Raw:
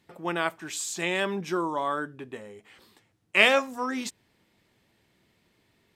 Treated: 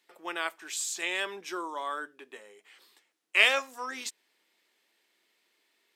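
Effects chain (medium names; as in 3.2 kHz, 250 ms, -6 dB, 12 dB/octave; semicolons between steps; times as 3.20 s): high-pass 360 Hz 24 dB/octave; peaking EQ 560 Hz -8.5 dB 2.4 oct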